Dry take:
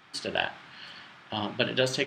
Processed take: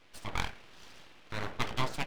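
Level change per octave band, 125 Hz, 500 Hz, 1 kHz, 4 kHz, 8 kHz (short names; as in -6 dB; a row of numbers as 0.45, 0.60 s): -2.0, -13.5, -2.0, -10.0, -6.5 dB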